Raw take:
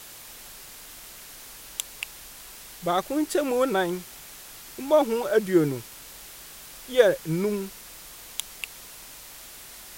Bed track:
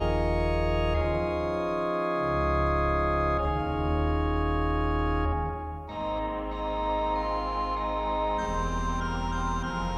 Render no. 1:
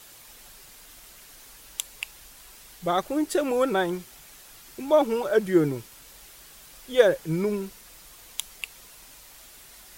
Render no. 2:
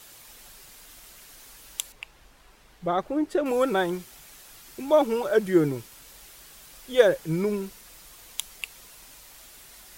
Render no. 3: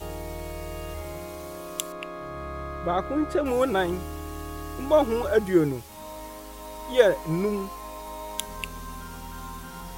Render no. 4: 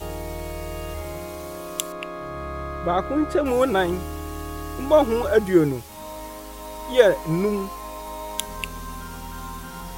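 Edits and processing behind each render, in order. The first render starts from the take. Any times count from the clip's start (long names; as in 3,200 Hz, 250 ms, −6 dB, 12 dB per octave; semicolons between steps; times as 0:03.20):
broadband denoise 6 dB, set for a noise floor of −45 dBFS
0:01.92–0:03.46: low-pass filter 1,500 Hz 6 dB per octave
mix in bed track −9.5 dB
level +3.5 dB; brickwall limiter −2 dBFS, peak gain reduction 1 dB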